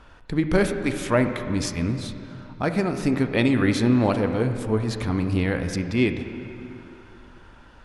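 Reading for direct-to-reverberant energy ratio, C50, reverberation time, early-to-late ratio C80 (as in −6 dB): 6.5 dB, 8.0 dB, 2.8 s, 8.5 dB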